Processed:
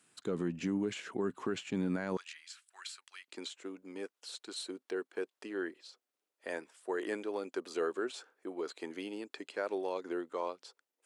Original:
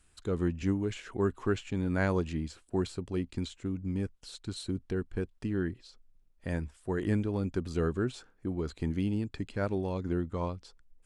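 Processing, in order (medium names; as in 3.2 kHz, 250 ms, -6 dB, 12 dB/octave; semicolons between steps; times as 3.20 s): high-pass 160 Hz 24 dB/octave, from 2.17 s 1.4 kHz, from 3.28 s 380 Hz; peak limiter -25.5 dBFS, peak gain reduction 11 dB; trim +1 dB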